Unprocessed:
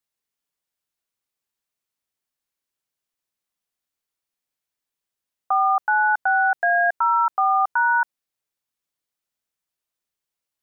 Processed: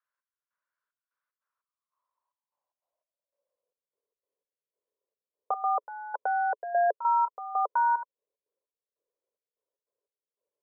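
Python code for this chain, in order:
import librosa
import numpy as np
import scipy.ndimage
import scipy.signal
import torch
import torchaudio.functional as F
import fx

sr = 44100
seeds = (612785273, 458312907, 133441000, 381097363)

y = fx.step_gate(x, sr, bpm=149, pattern='xx...xxxx..xx.', floor_db=-12.0, edge_ms=4.5)
y = fx.small_body(y, sr, hz=(560.0, 1000.0), ring_ms=20, db=15)
y = fx.filter_sweep_bandpass(y, sr, from_hz=1500.0, to_hz=430.0, start_s=1.32, end_s=3.95, q=6.1)
y = F.gain(torch.from_numpy(y), 7.5).numpy()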